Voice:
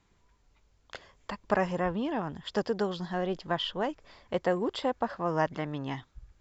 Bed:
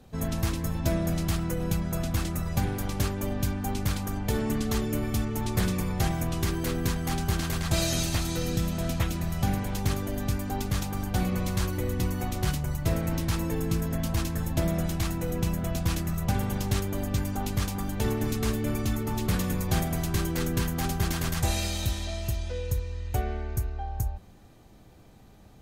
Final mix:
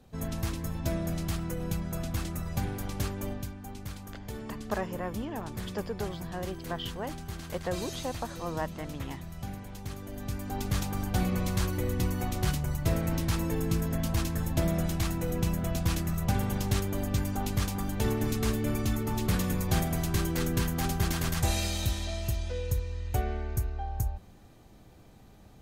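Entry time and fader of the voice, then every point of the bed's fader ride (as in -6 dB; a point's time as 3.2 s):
3.20 s, -6.0 dB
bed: 3.3 s -4.5 dB
3.51 s -12 dB
9.89 s -12 dB
10.74 s -1 dB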